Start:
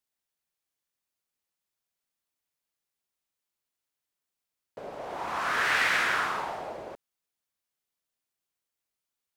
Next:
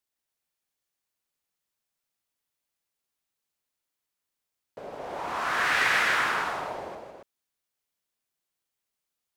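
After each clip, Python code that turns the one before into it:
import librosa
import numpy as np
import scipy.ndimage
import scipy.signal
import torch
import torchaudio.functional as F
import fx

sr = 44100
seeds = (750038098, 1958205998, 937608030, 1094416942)

y = fx.echo_multitap(x, sr, ms=(158, 277), db=(-6.0, -6.0))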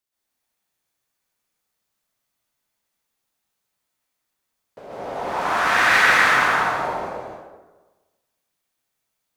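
y = fx.rev_plate(x, sr, seeds[0], rt60_s=1.2, hf_ratio=0.55, predelay_ms=115, drr_db=-8.0)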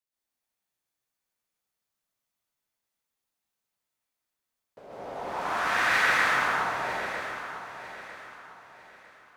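y = fx.echo_feedback(x, sr, ms=951, feedback_pct=33, wet_db=-11.5)
y = y * librosa.db_to_amplitude(-8.0)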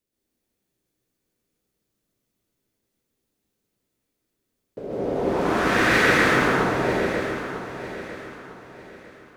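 y = fx.low_shelf_res(x, sr, hz=570.0, db=12.5, q=1.5)
y = y * librosa.db_to_amplitude(5.0)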